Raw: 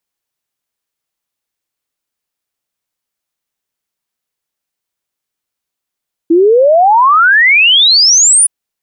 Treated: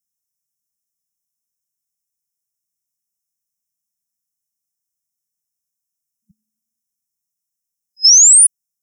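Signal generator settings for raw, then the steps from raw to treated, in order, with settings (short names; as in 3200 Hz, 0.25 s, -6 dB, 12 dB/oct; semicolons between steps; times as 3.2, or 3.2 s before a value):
log sweep 320 Hz -> 10000 Hz 2.17 s -4 dBFS
FFT band-reject 220–5100 Hz; low shelf 190 Hz -9.5 dB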